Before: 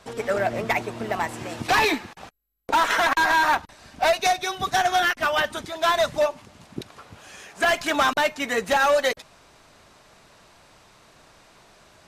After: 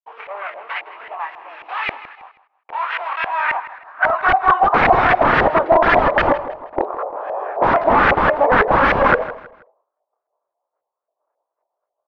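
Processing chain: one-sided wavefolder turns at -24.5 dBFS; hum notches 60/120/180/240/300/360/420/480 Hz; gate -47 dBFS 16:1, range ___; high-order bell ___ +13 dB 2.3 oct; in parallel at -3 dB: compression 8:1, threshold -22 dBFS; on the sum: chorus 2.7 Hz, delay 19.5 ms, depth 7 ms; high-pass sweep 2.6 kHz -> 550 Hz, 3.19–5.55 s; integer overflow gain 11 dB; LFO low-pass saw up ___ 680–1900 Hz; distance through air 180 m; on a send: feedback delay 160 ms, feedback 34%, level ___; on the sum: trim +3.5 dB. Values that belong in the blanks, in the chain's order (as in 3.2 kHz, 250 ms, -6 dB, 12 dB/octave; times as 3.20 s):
-53 dB, 580 Hz, 3.7 Hz, -16.5 dB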